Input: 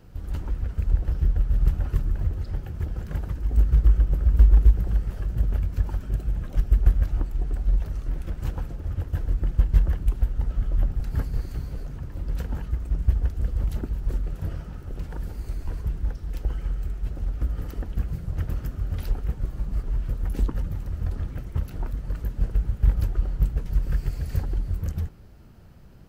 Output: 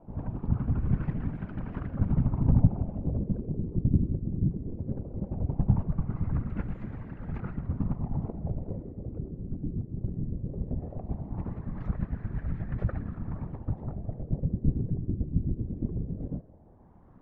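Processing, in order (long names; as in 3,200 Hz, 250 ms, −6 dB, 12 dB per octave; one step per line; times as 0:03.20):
gliding playback speed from 181% → 122%
random phases in short frames
auto-filter low-pass sine 0.18 Hz 340–1,700 Hz
level −6.5 dB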